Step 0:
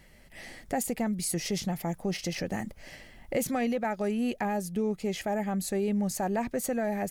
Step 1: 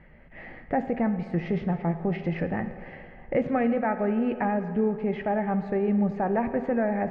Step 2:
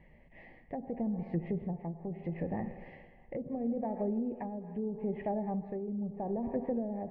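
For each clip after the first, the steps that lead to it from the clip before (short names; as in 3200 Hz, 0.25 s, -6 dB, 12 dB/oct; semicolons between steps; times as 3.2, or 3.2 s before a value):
LPF 2100 Hz 24 dB/oct; reverb RT60 2.4 s, pre-delay 3 ms, DRR 8 dB; gain +4 dB
Butterworth band-stop 1400 Hz, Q 2.1; treble ducked by the level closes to 450 Hz, closed at -21 dBFS; tremolo 0.76 Hz, depth 54%; gain -6 dB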